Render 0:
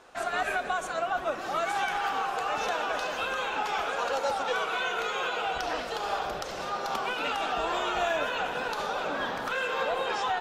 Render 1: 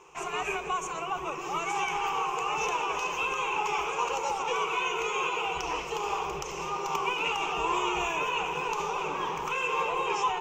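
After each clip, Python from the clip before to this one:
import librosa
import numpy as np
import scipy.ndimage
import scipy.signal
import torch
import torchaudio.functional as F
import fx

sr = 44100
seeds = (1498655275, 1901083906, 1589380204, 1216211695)

y = fx.ripple_eq(x, sr, per_octave=0.74, db=17)
y = F.gain(torch.from_numpy(y), -2.5).numpy()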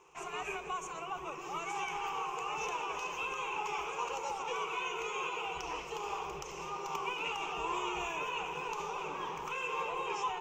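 y = fx.dmg_crackle(x, sr, seeds[0], per_s=29.0, level_db=-50.0)
y = F.gain(torch.from_numpy(y), -7.5).numpy()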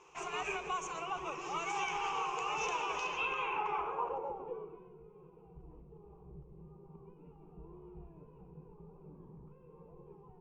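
y = fx.filter_sweep_lowpass(x, sr, from_hz=6200.0, to_hz=170.0, start_s=2.93, end_s=4.99, q=1.1)
y = F.gain(torch.from_numpy(y), 1.0).numpy()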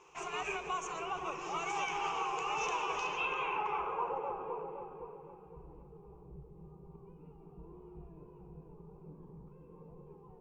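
y = fx.echo_wet_lowpass(x, sr, ms=515, feedback_pct=32, hz=1300.0, wet_db=-6.0)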